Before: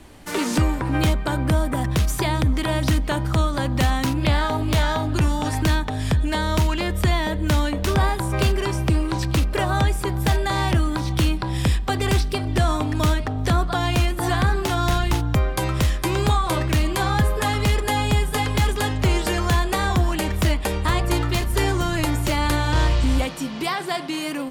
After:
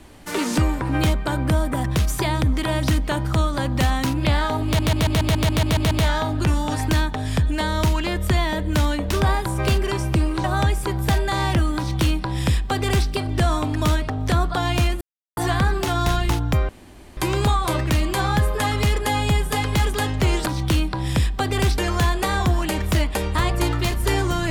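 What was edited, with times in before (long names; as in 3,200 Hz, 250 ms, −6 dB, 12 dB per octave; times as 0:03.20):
0:04.65: stutter 0.14 s, 10 plays
0:09.18–0:09.62: remove
0:10.95–0:12.27: duplicate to 0:19.28
0:14.19: splice in silence 0.36 s
0:15.51–0:15.99: fill with room tone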